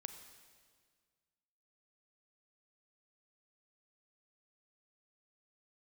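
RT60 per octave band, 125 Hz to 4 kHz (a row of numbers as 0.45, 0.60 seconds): 2.1, 2.0, 1.9, 1.7, 1.7, 1.6 seconds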